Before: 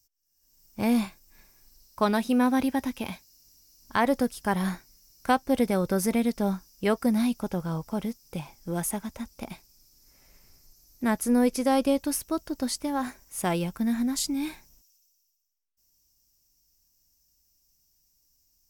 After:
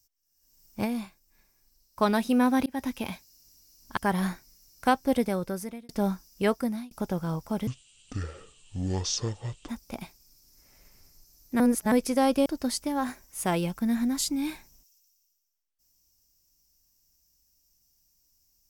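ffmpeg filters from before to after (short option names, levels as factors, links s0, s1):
-filter_complex "[0:a]asplit=12[s0][s1][s2][s3][s4][s5][s6][s7][s8][s9][s10][s11];[s0]atrim=end=1.06,asetpts=PTS-STARTPTS,afade=t=out:st=0.84:d=0.22:c=exp:silence=0.375837[s12];[s1]atrim=start=1.06:end=1.77,asetpts=PTS-STARTPTS,volume=0.376[s13];[s2]atrim=start=1.77:end=2.66,asetpts=PTS-STARTPTS,afade=t=in:d=0.22:c=exp:silence=0.375837,afade=t=out:st=0.886:d=0.004:c=hsin[s14];[s3]atrim=start=2.66:end=3.972,asetpts=PTS-STARTPTS,afade=t=in:d=0.29:c=qsin[s15];[s4]atrim=start=4.388:end=6.31,asetpts=PTS-STARTPTS,afade=t=out:st=1.102:d=0.82[s16];[s5]atrim=start=6.31:end=7.33,asetpts=PTS-STARTPTS,afade=t=in:d=0.004:c=hsin,afade=t=out:st=0.59:d=0.43[s17];[s6]atrim=start=7.33:end=8.094,asetpts=PTS-STARTPTS,afade=t=in:d=0.004:c=hsin[s18];[s7]atrim=start=8.09:end=9.18,asetpts=PTS-STARTPTS,asetrate=23814,aresample=44100[s19];[s8]atrim=start=9.176:end=11.092[s20];[s9]atrim=start=11.088:end=11.412,asetpts=PTS-STARTPTS,areverse[s21];[s10]atrim=start=11.408:end=11.952[s22];[s11]atrim=start=12.438[s23];[s12][s13][s14][s15]concat=n=4:v=0:a=1[s24];[s16][s17][s18]concat=n=3:v=0:a=1[s25];[s24][s25]acrossfade=d=0.004:c1=hsin:c2=hsin[s26];[s26][s19]acrossfade=d=0.004:c1=hsin:c2=hsin[s27];[s27][s20]acrossfade=d=0.004:c1=hsin:c2=hsin[s28];[s28][s21]acrossfade=d=0.004:c1=hsin:c2=hsin[s29];[s29][s22]acrossfade=d=0.004:c1=hsin:c2=hsin[s30];[s30][s23]acrossfade=d=0.004:c1=hsin:c2=hsin"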